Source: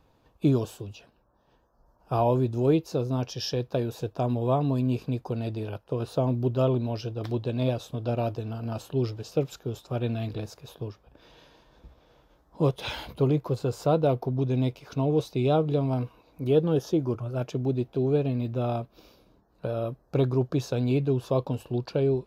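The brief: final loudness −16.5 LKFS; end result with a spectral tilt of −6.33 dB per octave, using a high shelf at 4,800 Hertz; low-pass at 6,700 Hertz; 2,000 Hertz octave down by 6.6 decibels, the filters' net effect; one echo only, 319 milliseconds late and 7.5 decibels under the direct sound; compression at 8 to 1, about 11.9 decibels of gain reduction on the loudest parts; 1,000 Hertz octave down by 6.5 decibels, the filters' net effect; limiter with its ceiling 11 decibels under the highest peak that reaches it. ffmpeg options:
ffmpeg -i in.wav -af "lowpass=6700,equalizer=frequency=1000:width_type=o:gain=-9,equalizer=frequency=2000:width_type=o:gain=-8.5,highshelf=frequency=4800:gain=6,acompressor=threshold=-31dB:ratio=8,alimiter=level_in=6.5dB:limit=-24dB:level=0:latency=1,volume=-6.5dB,aecho=1:1:319:0.422,volume=23dB" out.wav

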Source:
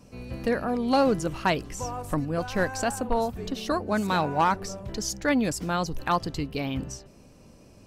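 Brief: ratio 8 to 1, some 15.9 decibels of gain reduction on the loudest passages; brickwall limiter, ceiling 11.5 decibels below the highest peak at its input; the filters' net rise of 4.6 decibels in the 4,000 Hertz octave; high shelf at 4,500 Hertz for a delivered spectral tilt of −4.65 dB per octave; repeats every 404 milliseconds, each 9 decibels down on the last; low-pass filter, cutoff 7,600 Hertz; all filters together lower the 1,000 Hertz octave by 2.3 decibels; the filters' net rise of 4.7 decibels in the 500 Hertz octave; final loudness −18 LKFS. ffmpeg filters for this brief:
ffmpeg -i in.wav -af "lowpass=7600,equalizer=frequency=500:width_type=o:gain=7,equalizer=frequency=1000:width_type=o:gain=-6,equalizer=frequency=4000:width_type=o:gain=8.5,highshelf=frequency=4500:gain=-4.5,acompressor=threshold=-32dB:ratio=8,alimiter=level_in=7dB:limit=-24dB:level=0:latency=1,volume=-7dB,aecho=1:1:404|808|1212|1616:0.355|0.124|0.0435|0.0152,volume=22dB" out.wav

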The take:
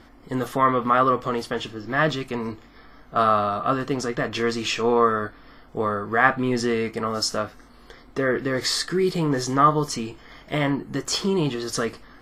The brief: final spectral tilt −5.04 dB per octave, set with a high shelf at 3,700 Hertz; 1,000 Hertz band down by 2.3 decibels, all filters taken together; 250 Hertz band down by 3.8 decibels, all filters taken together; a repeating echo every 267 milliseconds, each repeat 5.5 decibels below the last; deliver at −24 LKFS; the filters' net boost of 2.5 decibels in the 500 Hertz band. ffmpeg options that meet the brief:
ffmpeg -i in.wav -af "equalizer=frequency=250:width_type=o:gain=-7,equalizer=frequency=500:width_type=o:gain=6,equalizer=frequency=1000:width_type=o:gain=-3.5,highshelf=frequency=3700:gain=-6.5,aecho=1:1:267|534|801|1068|1335|1602|1869:0.531|0.281|0.149|0.079|0.0419|0.0222|0.0118,volume=-1dB" out.wav

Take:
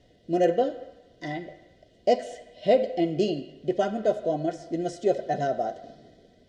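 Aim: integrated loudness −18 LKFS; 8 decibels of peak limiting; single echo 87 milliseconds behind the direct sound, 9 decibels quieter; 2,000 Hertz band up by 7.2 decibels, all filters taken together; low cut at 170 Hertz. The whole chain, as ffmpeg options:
ffmpeg -i in.wav -af "highpass=170,equalizer=frequency=2000:width_type=o:gain=8.5,alimiter=limit=-17dB:level=0:latency=1,aecho=1:1:87:0.355,volume=11dB" out.wav

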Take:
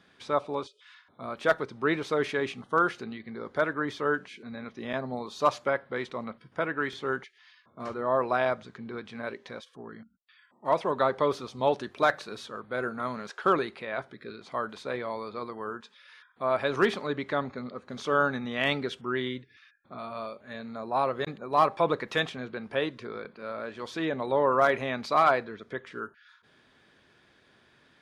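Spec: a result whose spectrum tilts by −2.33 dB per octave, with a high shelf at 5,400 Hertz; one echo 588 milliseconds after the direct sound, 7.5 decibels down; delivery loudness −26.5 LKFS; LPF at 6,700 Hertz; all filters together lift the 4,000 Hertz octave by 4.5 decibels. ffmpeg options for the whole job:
ffmpeg -i in.wav -af "lowpass=6700,equalizer=frequency=4000:width_type=o:gain=3.5,highshelf=frequency=5400:gain=6.5,aecho=1:1:588:0.422,volume=2.5dB" out.wav

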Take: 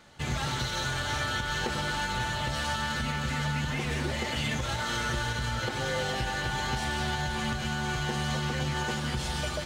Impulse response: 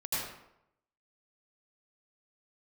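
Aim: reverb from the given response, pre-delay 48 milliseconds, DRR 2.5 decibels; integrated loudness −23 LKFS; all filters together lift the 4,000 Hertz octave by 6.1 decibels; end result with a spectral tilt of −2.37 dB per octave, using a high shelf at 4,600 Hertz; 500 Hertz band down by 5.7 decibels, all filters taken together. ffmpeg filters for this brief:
-filter_complex "[0:a]equalizer=frequency=500:width_type=o:gain=-7.5,equalizer=frequency=4000:width_type=o:gain=4,highshelf=frequency=4600:gain=8,asplit=2[link_01][link_02];[1:a]atrim=start_sample=2205,adelay=48[link_03];[link_02][link_03]afir=irnorm=-1:irlink=0,volume=-8dB[link_04];[link_01][link_04]amix=inputs=2:normalize=0,volume=3.5dB"

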